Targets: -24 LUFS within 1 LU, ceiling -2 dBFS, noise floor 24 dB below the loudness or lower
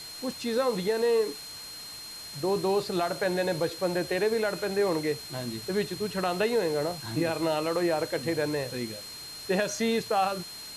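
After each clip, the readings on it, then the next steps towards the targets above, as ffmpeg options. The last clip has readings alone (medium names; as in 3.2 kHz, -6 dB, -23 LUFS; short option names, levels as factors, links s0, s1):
steady tone 4.2 kHz; tone level -41 dBFS; noise floor -42 dBFS; noise floor target -53 dBFS; loudness -29.0 LUFS; peak level -14.5 dBFS; loudness target -24.0 LUFS
-> -af "bandreject=f=4200:w=30"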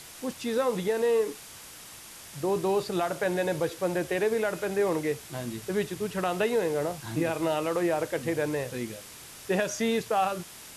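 steady tone not found; noise floor -46 dBFS; noise floor target -53 dBFS
-> -af "afftdn=nr=7:nf=-46"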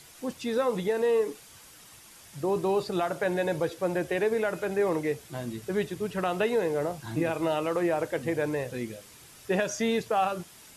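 noise floor -52 dBFS; noise floor target -53 dBFS
-> -af "afftdn=nr=6:nf=-52"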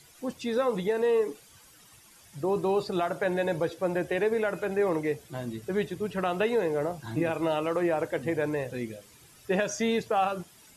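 noise floor -56 dBFS; loudness -29.0 LUFS; peak level -14.5 dBFS; loudness target -24.0 LUFS
-> -af "volume=1.78"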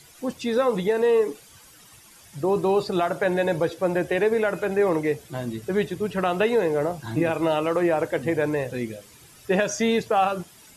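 loudness -24.0 LUFS; peak level -9.5 dBFS; noise floor -51 dBFS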